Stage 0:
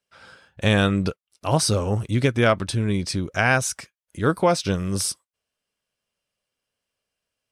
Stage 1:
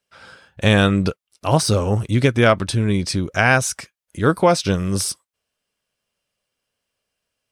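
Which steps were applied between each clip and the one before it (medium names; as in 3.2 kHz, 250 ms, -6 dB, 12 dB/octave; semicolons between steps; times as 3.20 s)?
de-esser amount 40%; trim +4 dB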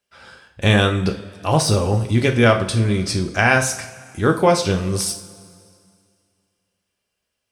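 two-slope reverb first 0.42 s, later 2.3 s, from -18 dB, DRR 3.5 dB; trim -1 dB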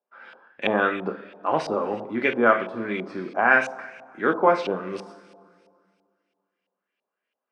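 high-pass 230 Hz 24 dB/octave; LFO low-pass saw up 3 Hz 740–2800 Hz; trim -5.5 dB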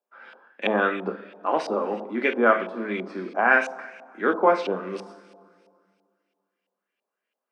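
elliptic high-pass 190 Hz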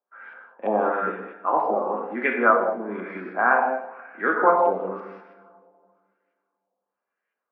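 gated-style reverb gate 230 ms flat, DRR 1.5 dB; LFO low-pass sine 1 Hz 780–1900 Hz; trim -4 dB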